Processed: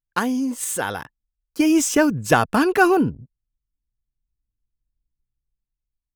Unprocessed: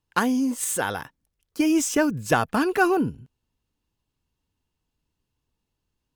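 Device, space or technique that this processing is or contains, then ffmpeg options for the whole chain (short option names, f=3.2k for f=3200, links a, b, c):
voice memo with heavy noise removal: -af "anlmdn=0.1,dynaudnorm=f=520:g=5:m=10.5dB"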